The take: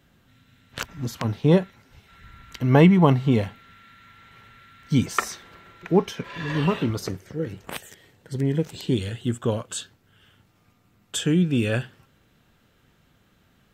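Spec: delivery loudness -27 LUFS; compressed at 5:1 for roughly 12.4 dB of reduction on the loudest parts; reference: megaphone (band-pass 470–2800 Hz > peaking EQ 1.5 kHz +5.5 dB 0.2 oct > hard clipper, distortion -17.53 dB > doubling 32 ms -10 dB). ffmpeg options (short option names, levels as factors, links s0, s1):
-filter_complex "[0:a]acompressor=threshold=0.0562:ratio=5,highpass=470,lowpass=2800,equalizer=f=1500:t=o:w=0.2:g=5.5,asoftclip=type=hard:threshold=0.0944,asplit=2[s0][s1];[s1]adelay=32,volume=0.316[s2];[s0][s2]amix=inputs=2:normalize=0,volume=3.55"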